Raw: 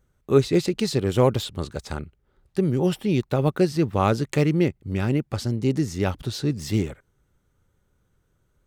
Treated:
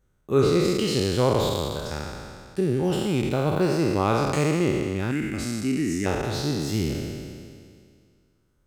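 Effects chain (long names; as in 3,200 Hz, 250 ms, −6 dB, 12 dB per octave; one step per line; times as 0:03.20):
peak hold with a decay on every bin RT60 2.12 s
0:05.11–0:06.06: graphic EQ with 10 bands 125 Hz −7 dB, 250 Hz +7 dB, 500 Hz −10 dB, 1,000 Hz −11 dB, 2,000 Hz +9 dB, 4,000 Hz −8 dB, 8,000 Hz +6 dB
level −4.5 dB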